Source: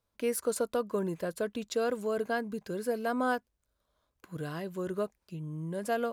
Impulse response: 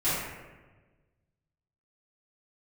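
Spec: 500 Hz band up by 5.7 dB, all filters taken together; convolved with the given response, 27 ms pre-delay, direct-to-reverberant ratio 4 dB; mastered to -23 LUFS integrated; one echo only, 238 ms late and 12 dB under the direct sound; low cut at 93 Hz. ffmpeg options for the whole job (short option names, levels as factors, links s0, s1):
-filter_complex "[0:a]highpass=93,equalizer=f=500:t=o:g=6.5,aecho=1:1:238:0.251,asplit=2[s0][s1];[1:a]atrim=start_sample=2205,adelay=27[s2];[s1][s2]afir=irnorm=-1:irlink=0,volume=0.168[s3];[s0][s3]amix=inputs=2:normalize=0,volume=1.78"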